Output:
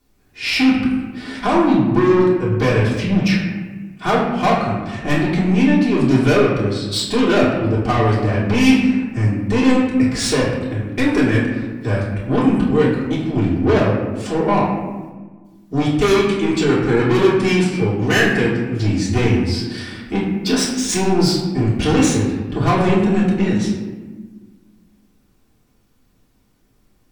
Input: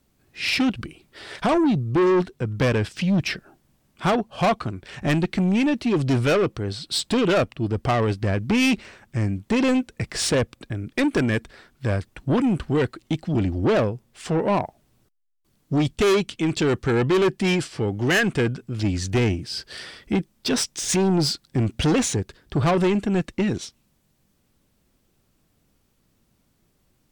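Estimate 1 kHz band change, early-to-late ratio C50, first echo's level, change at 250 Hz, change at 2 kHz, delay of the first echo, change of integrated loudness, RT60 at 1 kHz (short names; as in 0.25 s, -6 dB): +6.5 dB, 2.5 dB, none, +7.0 dB, +5.5 dB, none, +5.5 dB, 1.3 s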